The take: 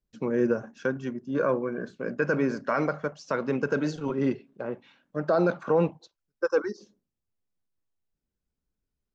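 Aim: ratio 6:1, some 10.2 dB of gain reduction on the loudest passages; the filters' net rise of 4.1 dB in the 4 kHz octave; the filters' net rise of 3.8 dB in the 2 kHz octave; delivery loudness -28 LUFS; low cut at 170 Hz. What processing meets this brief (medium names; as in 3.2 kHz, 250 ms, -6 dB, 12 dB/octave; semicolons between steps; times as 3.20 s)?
high-pass 170 Hz; peaking EQ 2 kHz +5 dB; peaking EQ 4 kHz +4 dB; compression 6:1, threshold -30 dBFS; trim +8 dB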